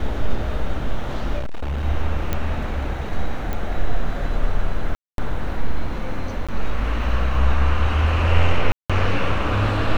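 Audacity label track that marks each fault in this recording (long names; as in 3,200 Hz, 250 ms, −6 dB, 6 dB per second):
1.380000	1.850000	clipping −21 dBFS
2.330000	2.330000	click −9 dBFS
3.530000	3.530000	click −14 dBFS
4.950000	5.180000	drop-out 232 ms
6.470000	6.490000	drop-out 16 ms
8.720000	8.900000	drop-out 176 ms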